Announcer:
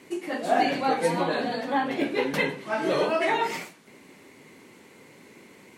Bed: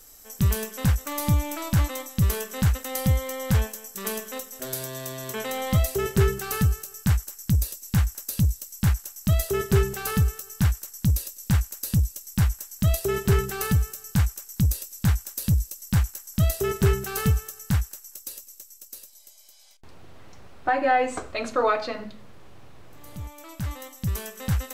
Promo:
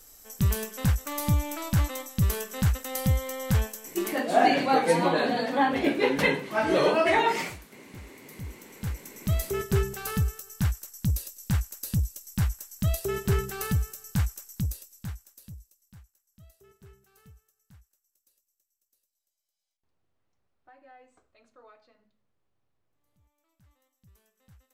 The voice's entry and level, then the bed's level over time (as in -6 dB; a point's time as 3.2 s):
3.85 s, +2.0 dB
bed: 4.04 s -2.5 dB
4.35 s -26 dB
7.9 s -26 dB
9.33 s -4.5 dB
14.44 s -4.5 dB
16.11 s -32.5 dB